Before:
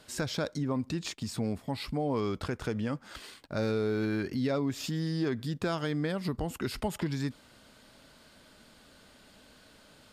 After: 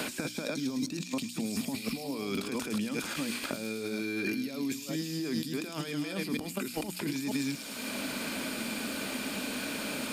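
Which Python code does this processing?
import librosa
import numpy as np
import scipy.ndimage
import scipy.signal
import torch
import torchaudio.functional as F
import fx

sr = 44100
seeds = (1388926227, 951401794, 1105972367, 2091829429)

p1 = fx.reverse_delay(x, sr, ms=236, wet_db=-7.5)
p2 = fx.riaa(p1, sr, side='recording')
p3 = fx.over_compress(p2, sr, threshold_db=-43.0, ratio=-1.0)
p4 = fx.hum_notches(p3, sr, base_hz=60, count=5)
p5 = fx.small_body(p4, sr, hz=(240.0, 2400.0), ring_ms=25, db=15)
p6 = p5 + fx.echo_wet_highpass(p5, sr, ms=106, feedback_pct=57, hz=4000.0, wet_db=-4.5, dry=0)
y = fx.band_squash(p6, sr, depth_pct=100)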